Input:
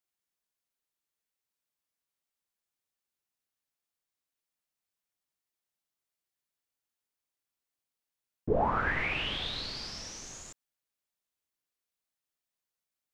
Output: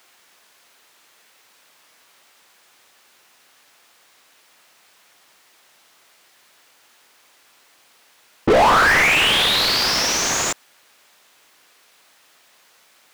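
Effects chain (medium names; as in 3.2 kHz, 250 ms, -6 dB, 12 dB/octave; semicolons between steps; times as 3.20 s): overdrive pedal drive 39 dB, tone 2.7 kHz, clips at -16.5 dBFS; trim +9 dB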